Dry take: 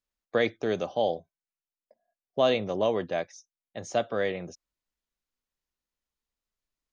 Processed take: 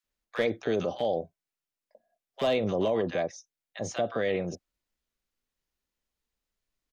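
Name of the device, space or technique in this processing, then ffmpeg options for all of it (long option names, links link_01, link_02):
clipper into limiter: -filter_complex "[0:a]highshelf=frequency=3600:gain=-3.5,asoftclip=type=hard:threshold=-16dB,alimiter=limit=-22.5dB:level=0:latency=1:release=42,acrossover=split=1000[link_01][link_02];[link_01]adelay=40[link_03];[link_03][link_02]amix=inputs=2:normalize=0,volume=5dB"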